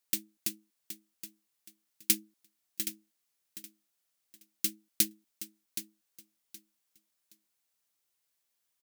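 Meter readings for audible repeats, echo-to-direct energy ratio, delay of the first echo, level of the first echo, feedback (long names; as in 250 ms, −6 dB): 2, −11.0 dB, 771 ms, −11.5 dB, 24%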